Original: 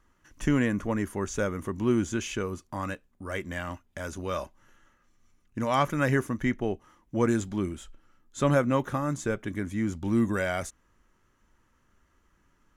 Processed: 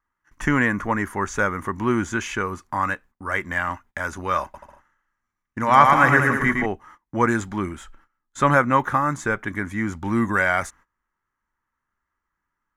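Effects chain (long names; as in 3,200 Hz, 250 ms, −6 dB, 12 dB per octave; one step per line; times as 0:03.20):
noise gate −54 dBFS, range −21 dB
flat-topped bell 1,300 Hz +10.5 dB
0:04.43–0:06.66: bouncing-ball delay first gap 110 ms, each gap 0.75×, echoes 5
level +2.5 dB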